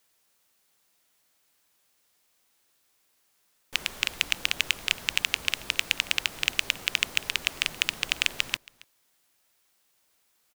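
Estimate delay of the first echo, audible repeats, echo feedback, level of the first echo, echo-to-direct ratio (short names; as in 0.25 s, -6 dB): 0.275 s, 1, no steady repeat, -23.0 dB, -23.0 dB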